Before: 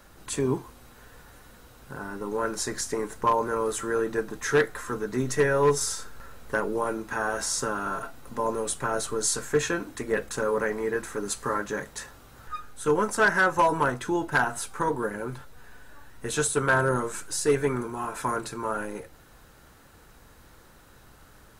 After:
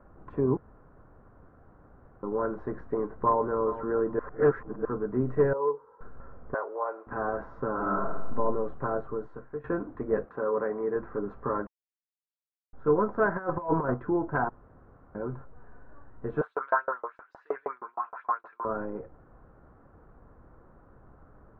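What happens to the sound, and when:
0:00.57–0:02.23: fill with room tone
0:02.79–0:03.60: delay throw 410 ms, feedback 15%, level −13.5 dB
0:04.19–0:04.85: reverse
0:05.53–0:06.01: pair of resonant band-passes 670 Hz, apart 0.89 octaves
0:06.54–0:07.07: high-pass filter 540 Hz 24 dB per octave
0:07.70–0:08.36: thrown reverb, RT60 0.87 s, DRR −2.5 dB
0:08.89–0:09.64: fade out, to −17 dB
0:10.24–0:10.95: high-pass filter 450 Hz → 200 Hz 6 dB per octave
0:11.67–0:12.73: silence
0:13.36–0:13.94: compressor whose output falls as the input rises −26 dBFS, ratio −0.5
0:14.49–0:15.15: fill with room tone
0:16.41–0:18.65: auto-filter high-pass saw up 6.4 Hz 670–6,400 Hz
whole clip: low-pass filter 1,200 Hz 24 dB per octave; notch filter 880 Hz, Q 12

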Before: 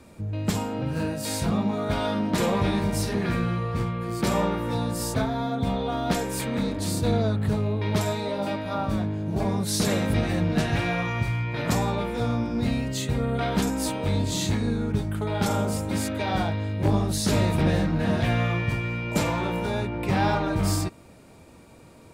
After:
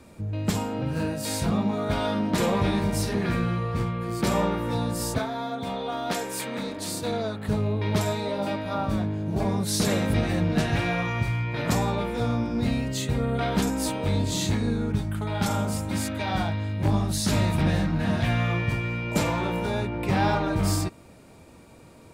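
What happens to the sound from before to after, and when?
0:05.18–0:07.49: high-pass filter 430 Hz 6 dB per octave
0:14.94–0:18.48: parametric band 440 Hz −7 dB

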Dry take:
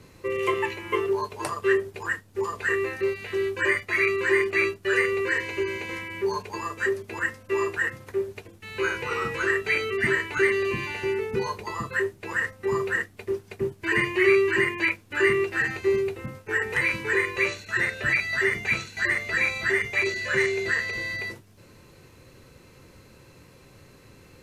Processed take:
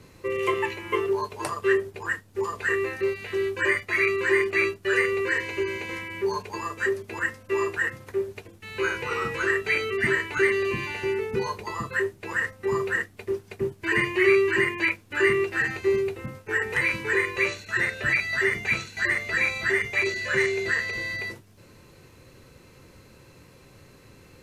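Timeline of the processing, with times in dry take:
0:01.66–0:02.11: one half of a high-frequency compander decoder only

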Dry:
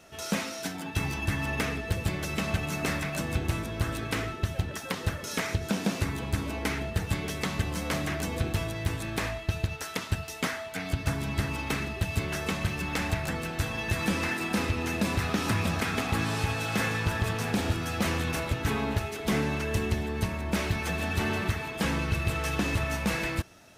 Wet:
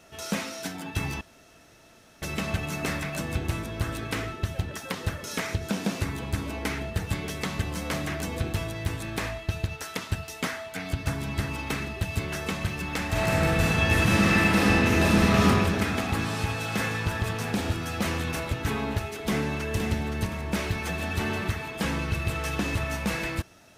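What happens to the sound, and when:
0:01.21–0:02.22: fill with room tone
0:13.07–0:15.41: thrown reverb, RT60 2.6 s, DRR −7.5 dB
0:19.26–0:19.74: delay throw 520 ms, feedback 40%, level −6.5 dB

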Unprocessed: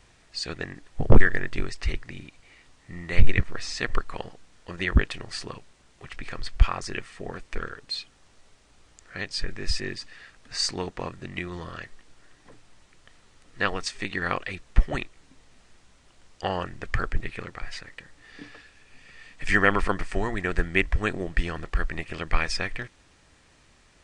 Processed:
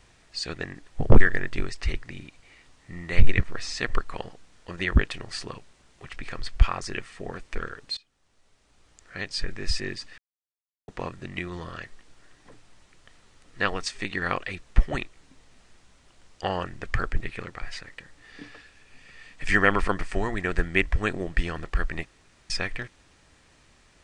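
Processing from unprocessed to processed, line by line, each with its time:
0:07.97–0:09.28: fade in, from −21.5 dB
0:10.18–0:10.88: silence
0:22.05–0:22.50: fill with room tone

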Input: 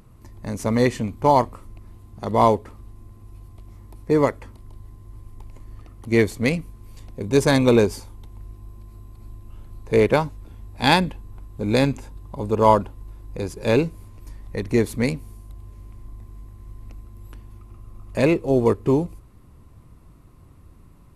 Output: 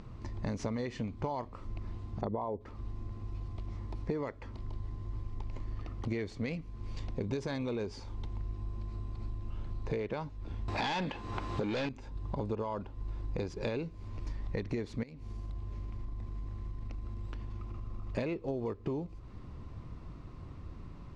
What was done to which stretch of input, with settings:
0:02.21–0:02.61: spectral envelope exaggerated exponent 1.5
0:10.68–0:11.89: mid-hump overdrive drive 29 dB, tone 6,500 Hz, clips at −1.5 dBFS
0:15.03–0:18.18: downward compressor 5 to 1, threshold −38 dBFS
whole clip: low-pass filter 5,600 Hz 24 dB per octave; brickwall limiter −11.5 dBFS; downward compressor 16 to 1, threshold −35 dBFS; level +3 dB

